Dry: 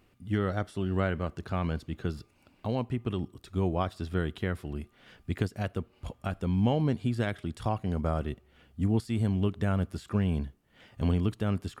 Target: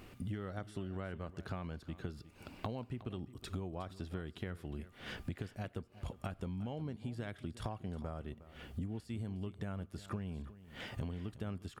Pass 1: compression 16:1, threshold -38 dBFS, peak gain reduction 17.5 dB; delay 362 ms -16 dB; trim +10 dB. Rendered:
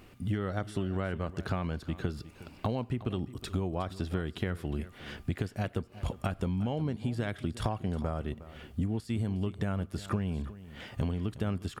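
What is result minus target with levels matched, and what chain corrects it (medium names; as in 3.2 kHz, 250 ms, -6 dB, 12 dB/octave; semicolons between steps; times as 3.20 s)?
compression: peak gain reduction -9.5 dB
compression 16:1, threshold -48 dBFS, peak gain reduction 27 dB; delay 362 ms -16 dB; trim +10 dB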